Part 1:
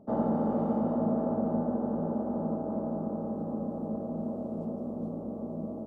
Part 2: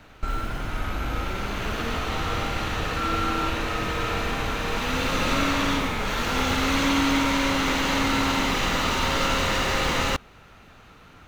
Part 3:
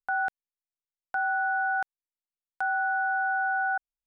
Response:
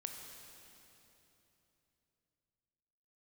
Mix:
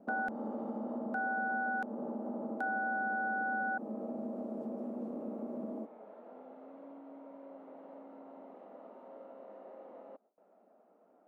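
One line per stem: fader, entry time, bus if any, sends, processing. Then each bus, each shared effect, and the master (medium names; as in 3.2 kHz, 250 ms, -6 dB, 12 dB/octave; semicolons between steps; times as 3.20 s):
-1.5 dB, 0.00 s, bus A, no send, none
-16.5 dB, 0.00 s, bus A, no send, compression 5:1, threshold -34 dBFS, peak gain reduction 14 dB; resonant low-pass 640 Hz, resonance Q 4.4
-1.0 dB, 0.00 s, no bus, no send, three bands expanded up and down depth 40%
bus A: 0.0 dB, brick-wall FIR high-pass 190 Hz; compression, threshold -33 dBFS, peak gain reduction 7.5 dB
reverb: none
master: gate with hold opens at -60 dBFS; compression 2:1, threshold -37 dBFS, peak gain reduction 7 dB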